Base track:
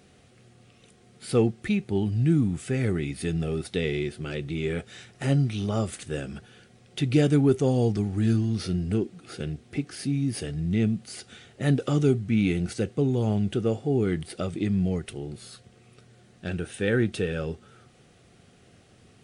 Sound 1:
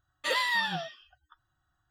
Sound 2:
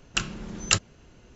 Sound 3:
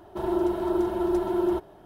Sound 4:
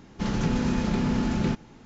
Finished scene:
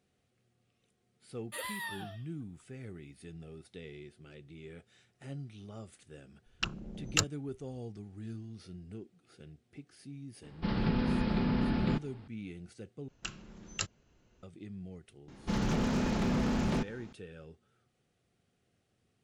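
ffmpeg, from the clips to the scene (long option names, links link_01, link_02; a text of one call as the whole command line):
ffmpeg -i bed.wav -i cue0.wav -i cue1.wav -i cue2.wav -i cue3.wav -filter_complex "[2:a]asplit=2[link_01][link_02];[4:a]asplit=2[link_03][link_04];[0:a]volume=-20dB[link_05];[1:a]highshelf=frequency=7900:width_type=q:width=3:gain=11[link_06];[link_01]afwtdn=0.0178[link_07];[link_03]aresample=11025,aresample=44100[link_08];[link_04]aeval=exprs='0.0891*(abs(mod(val(0)/0.0891+3,4)-2)-1)':channel_layout=same[link_09];[link_05]asplit=2[link_10][link_11];[link_10]atrim=end=13.084[link_12];[link_02]atrim=end=1.35,asetpts=PTS-STARTPTS,volume=-14dB[link_13];[link_11]atrim=start=14.426[link_14];[link_06]atrim=end=1.9,asetpts=PTS-STARTPTS,volume=-12dB,afade=type=in:duration=0.004:curve=hsin,afade=type=out:start_time=1.896:duration=0.004:curve=hsin,adelay=1280[link_15];[link_07]atrim=end=1.35,asetpts=PTS-STARTPTS,volume=-6.5dB,afade=type=in:duration=0.004:curve=hsin,afade=type=out:start_time=1.346:duration=0.004:curve=hsin,adelay=6460[link_16];[link_08]atrim=end=1.85,asetpts=PTS-STARTPTS,volume=-5dB,afade=type=in:duration=0.004:curve=hsin,afade=type=out:start_time=1.846:duration=0.004:curve=hsin,adelay=10430[link_17];[link_09]atrim=end=1.85,asetpts=PTS-STARTPTS,volume=-3.5dB,afade=type=in:duration=0.004:curve=hsin,afade=type=out:start_time=1.846:duration=0.004:curve=hsin,adelay=15280[link_18];[link_12][link_13]acrossfade=duration=0.004:curve1=hsin:curve2=hsin[link_19];[link_19][link_14]acrossfade=duration=0.004:curve1=hsin:curve2=hsin[link_20];[link_20][link_15][link_16][link_17][link_18]amix=inputs=5:normalize=0" out.wav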